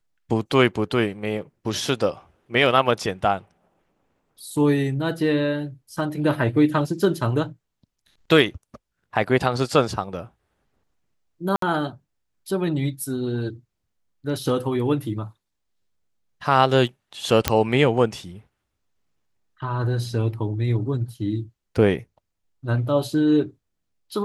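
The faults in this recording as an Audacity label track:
11.560000	11.620000	dropout 63 ms
17.480000	17.480000	pop -1 dBFS

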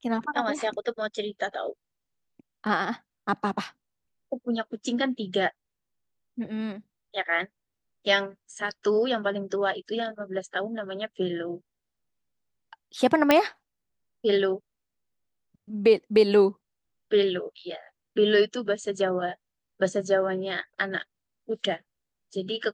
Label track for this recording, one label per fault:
13.310000	13.310000	pop -5 dBFS

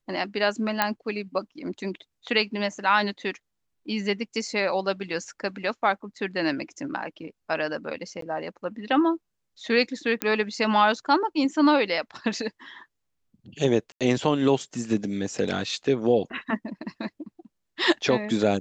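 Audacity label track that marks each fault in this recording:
0.820000	0.820000	pop -6 dBFS
8.210000	8.220000	dropout 13 ms
10.220000	10.220000	pop -8 dBFS
13.920000	14.010000	dropout 87 ms

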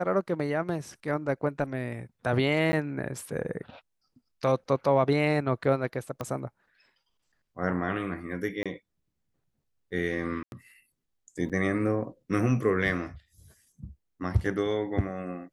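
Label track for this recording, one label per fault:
2.720000	2.730000	dropout 10 ms
6.210000	6.210000	pop -20 dBFS
8.630000	8.660000	dropout 26 ms
10.430000	10.520000	dropout 91 ms
11.490000	11.500000	dropout 7.1 ms

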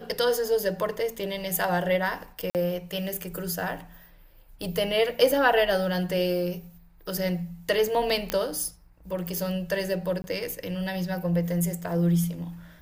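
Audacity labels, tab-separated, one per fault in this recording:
2.500000	2.550000	dropout 48 ms
8.300000	8.300000	pop -10 dBFS
10.220000	10.240000	dropout 20 ms

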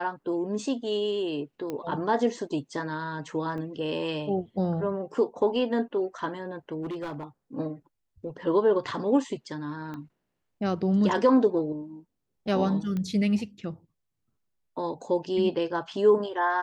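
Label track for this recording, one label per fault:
1.700000	1.700000	pop -20 dBFS
3.580000	3.580000	dropout 2.5 ms
6.820000	7.240000	clipped -30 dBFS
9.940000	9.940000	pop -26 dBFS
12.970000	12.970000	pop -21 dBFS

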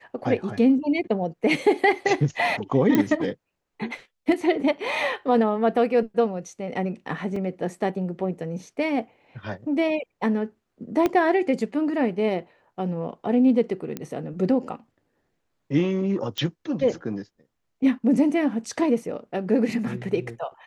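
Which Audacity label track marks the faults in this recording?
2.950000	2.950000	pop -8 dBFS
7.360000	7.360000	dropout 3.5 ms
11.060000	11.060000	pop -10 dBFS
13.970000	13.970000	pop -16 dBFS
16.380000	16.380000	pop -15 dBFS

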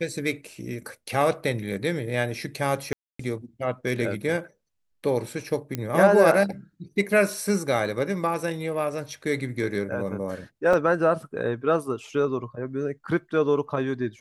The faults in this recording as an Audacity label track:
2.930000	3.190000	dropout 264 ms
5.750000	5.750000	pop -13 dBFS
10.730000	10.730000	dropout 4.4 ms

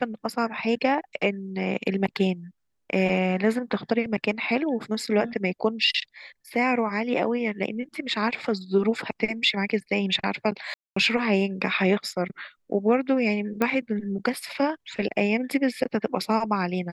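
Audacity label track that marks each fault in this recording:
10.740000	10.960000	dropout 224 ms
13.620000	13.620000	pop -11 dBFS

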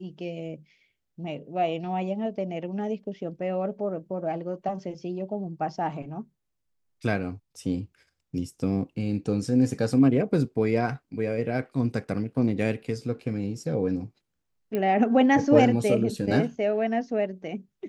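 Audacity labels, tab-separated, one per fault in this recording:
14.750000	14.750000	pop -17 dBFS

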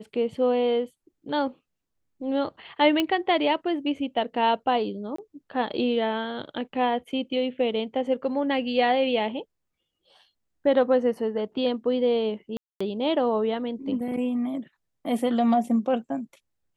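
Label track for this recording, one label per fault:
3.000000	3.000000	pop -11 dBFS
5.160000	5.180000	dropout 24 ms
12.570000	12.800000	dropout 235 ms

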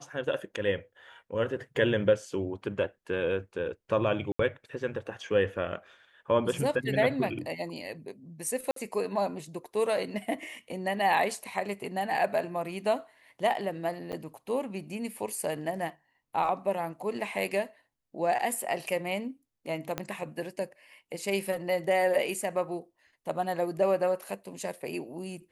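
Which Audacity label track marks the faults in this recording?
4.320000	4.390000	dropout 74 ms
8.710000	8.760000	dropout 53 ms
14.120000	14.130000	dropout 8.9 ms
19.980000	19.980000	pop -16 dBFS

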